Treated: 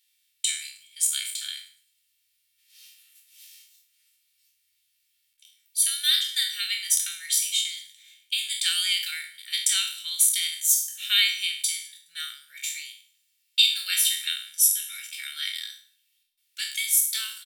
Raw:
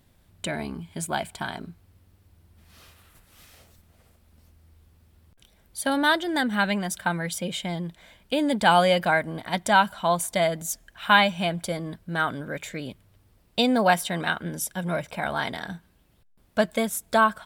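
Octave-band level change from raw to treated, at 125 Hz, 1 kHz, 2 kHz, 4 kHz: under -40 dB, -28.0 dB, -7.0 dB, +8.0 dB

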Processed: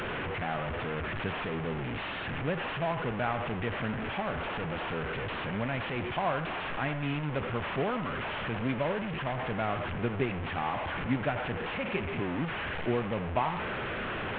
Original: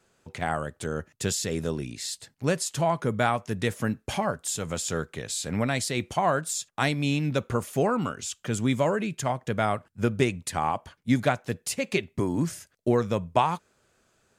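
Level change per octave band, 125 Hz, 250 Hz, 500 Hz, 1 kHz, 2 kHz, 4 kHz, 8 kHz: -5.0 dB, -5.5 dB, -5.0 dB, -4.0 dB, 0.0 dB, -4.5 dB, under -40 dB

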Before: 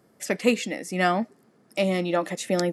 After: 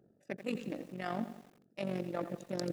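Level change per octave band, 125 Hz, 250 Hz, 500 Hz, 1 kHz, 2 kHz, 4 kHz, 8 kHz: -11.0 dB, -12.0 dB, -14.5 dB, -15.5 dB, -17.5 dB, -16.5 dB, -19.5 dB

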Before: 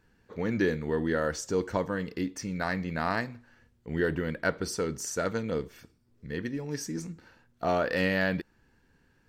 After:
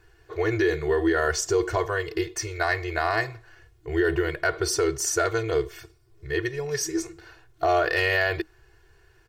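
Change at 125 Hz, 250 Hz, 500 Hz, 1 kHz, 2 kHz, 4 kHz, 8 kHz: +2.5 dB, +2.0 dB, +6.0 dB, +6.5 dB, +7.0 dB, +8.0 dB, +9.5 dB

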